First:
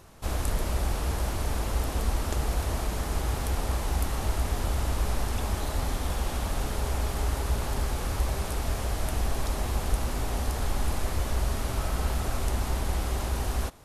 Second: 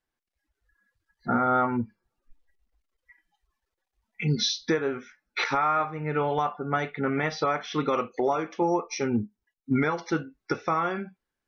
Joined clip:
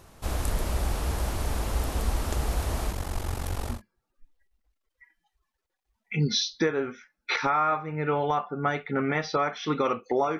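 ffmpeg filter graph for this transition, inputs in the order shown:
-filter_complex "[0:a]asettb=1/sr,asplit=3[a][b][c];[a]atrim=end=2.914[d];[b]atrim=start=2.91:end=3.82,asetpts=PTS-STARTPTS,afade=t=in:d=0.004:c=qsin,afade=t=out:st=0.906:d=0.004:c=qsin,aeval=exprs='val(0)*sin(2*PI*23*n/s)':c=same[e];[c]atrim=start=3.816[f];[d][e]acrossfade=d=0.004:c1=hsin:c2=qsin[g];[g][f]acrossfade=d=0.004:c1=qsin:c2=hsin,apad=whole_dur=10.39,atrim=end=10.39,atrim=end=3.82,asetpts=PTS-STARTPTS[h];[1:a]atrim=start=1.76:end=8.47,asetpts=PTS-STARTPTS[i];[h][i]acrossfade=d=0.14:c1=tri:c2=tri"

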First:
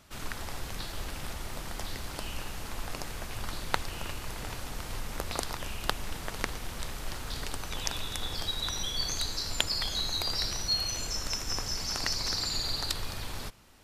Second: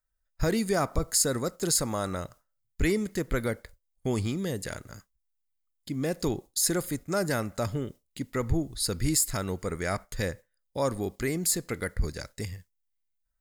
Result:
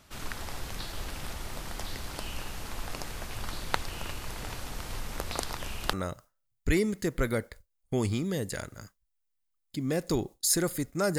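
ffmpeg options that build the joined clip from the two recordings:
-filter_complex "[0:a]apad=whole_dur=11.18,atrim=end=11.18,atrim=end=5.932[a];[1:a]atrim=start=2.058:end=7.31[b];[a][b]acrossfade=d=0.004:c1=hsin:c2=hsin"

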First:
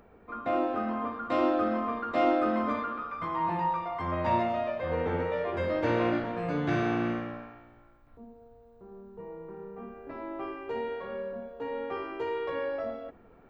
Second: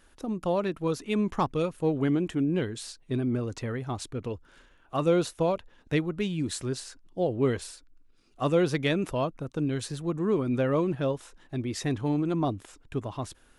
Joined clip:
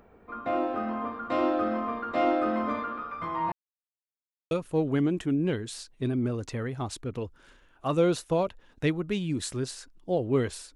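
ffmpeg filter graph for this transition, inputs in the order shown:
-filter_complex "[0:a]apad=whole_dur=10.75,atrim=end=10.75,asplit=2[a][b];[a]atrim=end=3.52,asetpts=PTS-STARTPTS,afade=t=out:st=3.516:d=0.004:c=hsin[c];[b]atrim=start=3.52:end=4.51,asetpts=PTS-STARTPTS,volume=0[d];[1:a]atrim=start=1.6:end=7.84,asetpts=PTS-STARTPTS,afade=t=in:d=0.004:c=hsin[e];[c][d][e]concat=n=3:v=0:a=1"

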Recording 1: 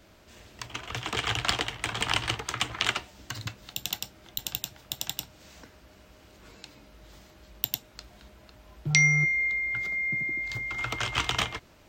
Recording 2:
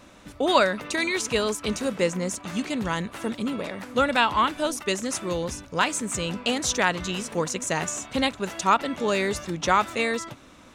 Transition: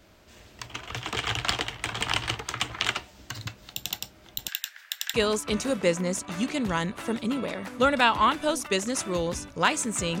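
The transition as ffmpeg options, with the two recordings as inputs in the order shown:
-filter_complex "[0:a]asettb=1/sr,asplit=3[a][b][c];[a]atrim=end=4.484[d];[b]atrim=start=4.48:end=5.14,asetpts=PTS-STARTPTS,afade=t=in:d=0.004:c=qsin,afade=t=out:st=0.656:d=0.004:c=qsin,highpass=f=1.7k:t=q:w=5.6[e];[c]atrim=start=5.136[f];[d][e]acrossfade=d=0.004:c1=hsin:c2=qsin[g];[g][f]acrossfade=d=0.004:c1=qsin:c2=hsin,apad=whole_dur=10.2,atrim=end=10.2,atrim=end=5.142[h];[1:a]atrim=start=1.298:end=6.36[i];[h][i]acrossfade=d=0.004:c1=hsin:c2=hsin"

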